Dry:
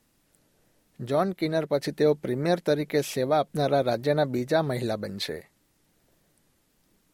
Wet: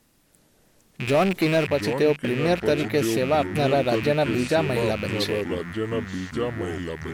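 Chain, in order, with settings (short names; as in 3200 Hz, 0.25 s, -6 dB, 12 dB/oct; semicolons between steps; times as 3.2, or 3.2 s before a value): rattling part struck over -43 dBFS, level -25 dBFS; in parallel at -2 dB: compressor, threshold -31 dBFS, peak gain reduction 13.5 dB; on the sum: echoes that change speed 0.341 s, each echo -5 st, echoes 2, each echo -6 dB; 1.07–1.67 power-law curve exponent 0.7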